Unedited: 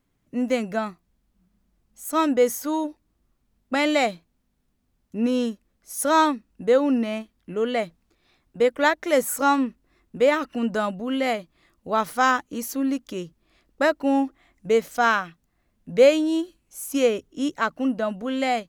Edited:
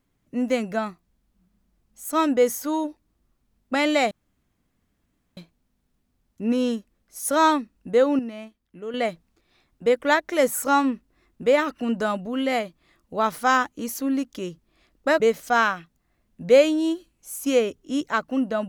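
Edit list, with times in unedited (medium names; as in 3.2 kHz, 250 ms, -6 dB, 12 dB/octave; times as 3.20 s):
4.11 s: insert room tone 1.26 s
6.93–7.68 s: gain -9 dB
13.94–14.68 s: delete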